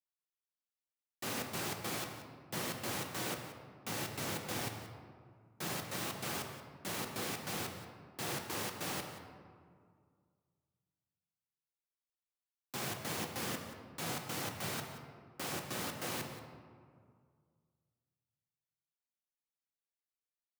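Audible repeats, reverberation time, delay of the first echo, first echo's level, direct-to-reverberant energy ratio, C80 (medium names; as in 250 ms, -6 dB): 1, 2.1 s, 179 ms, -14.5 dB, 3.5 dB, 6.5 dB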